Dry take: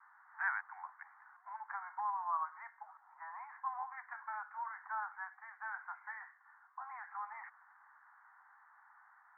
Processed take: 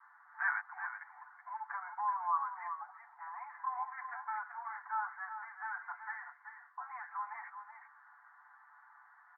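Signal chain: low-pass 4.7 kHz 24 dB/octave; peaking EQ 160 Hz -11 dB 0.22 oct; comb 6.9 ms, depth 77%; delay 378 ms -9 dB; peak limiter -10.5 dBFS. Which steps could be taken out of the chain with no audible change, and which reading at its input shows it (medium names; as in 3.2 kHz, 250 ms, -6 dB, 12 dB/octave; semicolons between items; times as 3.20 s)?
low-pass 4.7 kHz: input has nothing above 2.3 kHz; peaking EQ 160 Hz: input has nothing below 600 Hz; peak limiter -10.5 dBFS: peak at its input -21.5 dBFS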